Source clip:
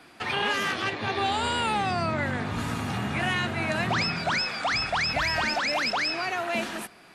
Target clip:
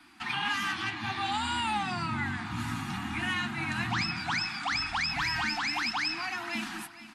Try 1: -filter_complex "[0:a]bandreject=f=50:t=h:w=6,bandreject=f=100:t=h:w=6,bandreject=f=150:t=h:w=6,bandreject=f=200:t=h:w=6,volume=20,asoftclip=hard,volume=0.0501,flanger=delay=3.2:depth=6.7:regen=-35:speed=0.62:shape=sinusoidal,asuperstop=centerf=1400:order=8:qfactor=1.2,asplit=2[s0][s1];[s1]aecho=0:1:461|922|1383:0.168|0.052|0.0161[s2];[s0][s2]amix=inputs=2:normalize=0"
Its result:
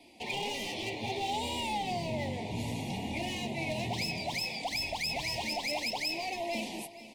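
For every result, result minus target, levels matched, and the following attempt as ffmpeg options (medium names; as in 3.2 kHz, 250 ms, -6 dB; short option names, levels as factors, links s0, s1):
overload inside the chain: distortion +37 dB; 500 Hz band +14.0 dB
-filter_complex "[0:a]bandreject=f=50:t=h:w=6,bandreject=f=100:t=h:w=6,bandreject=f=150:t=h:w=6,bandreject=f=200:t=h:w=6,volume=6.68,asoftclip=hard,volume=0.15,flanger=delay=3.2:depth=6.7:regen=-35:speed=0.62:shape=sinusoidal,asuperstop=centerf=1400:order=8:qfactor=1.2,asplit=2[s0][s1];[s1]aecho=0:1:461|922|1383:0.168|0.052|0.0161[s2];[s0][s2]amix=inputs=2:normalize=0"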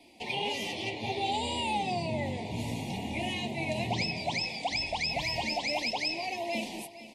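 500 Hz band +14.0 dB
-filter_complex "[0:a]bandreject=f=50:t=h:w=6,bandreject=f=100:t=h:w=6,bandreject=f=150:t=h:w=6,bandreject=f=200:t=h:w=6,volume=6.68,asoftclip=hard,volume=0.15,flanger=delay=3.2:depth=6.7:regen=-35:speed=0.62:shape=sinusoidal,asuperstop=centerf=510:order=8:qfactor=1.2,asplit=2[s0][s1];[s1]aecho=0:1:461|922|1383:0.168|0.052|0.0161[s2];[s0][s2]amix=inputs=2:normalize=0"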